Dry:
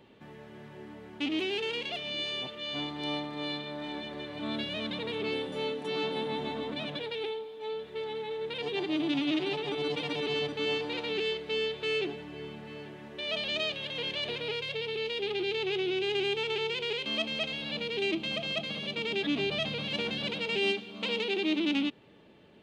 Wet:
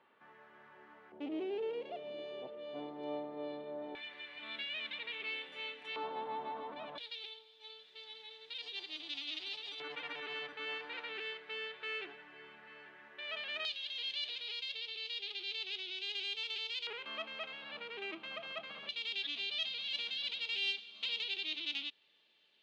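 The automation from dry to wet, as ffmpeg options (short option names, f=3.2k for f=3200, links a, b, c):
-af "asetnsamples=n=441:p=0,asendcmd='1.12 bandpass f 530;3.95 bandpass f 2300;5.96 bandpass f 960;6.98 bandpass f 4400;9.8 bandpass f 1600;13.65 bandpass f 4200;16.87 bandpass f 1300;18.89 bandpass f 3900',bandpass=f=1.3k:t=q:w=2:csg=0"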